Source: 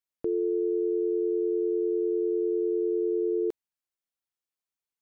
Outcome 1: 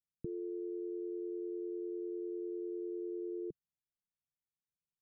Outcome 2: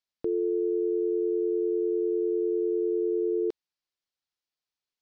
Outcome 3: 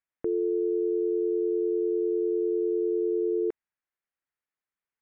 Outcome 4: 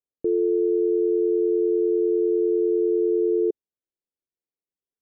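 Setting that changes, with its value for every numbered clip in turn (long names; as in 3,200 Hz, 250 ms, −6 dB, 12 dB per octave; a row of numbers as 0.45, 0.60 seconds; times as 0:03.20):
low-pass with resonance, frequency: 160, 4,800, 1,900, 430 Hertz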